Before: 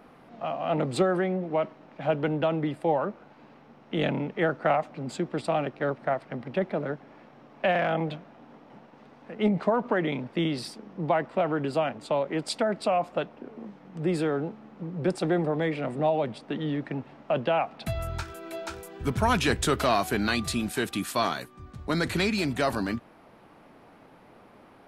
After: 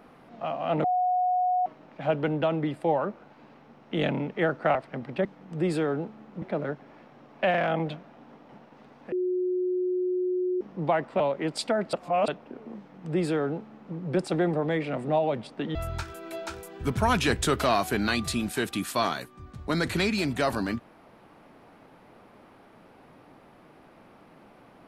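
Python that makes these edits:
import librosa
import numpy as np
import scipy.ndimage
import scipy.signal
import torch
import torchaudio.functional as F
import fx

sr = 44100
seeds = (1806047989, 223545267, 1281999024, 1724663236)

y = fx.edit(x, sr, fx.bleep(start_s=0.84, length_s=0.82, hz=729.0, db=-21.5),
    fx.cut(start_s=4.75, length_s=1.38),
    fx.bleep(start_s=9.33, length_s=1.49, hz=364.0, db=-24.0),
    fx.cut(start_s=11.41, length_s=0.7),
    fx.reverse_span(start_s=12.84, length_s=0.35),
    fx.duplicate(start_s=13.69, length_s=1.17, to_s=6.63),
    fx.cut(start_s=16.66, length_s=1.29), tone=tone)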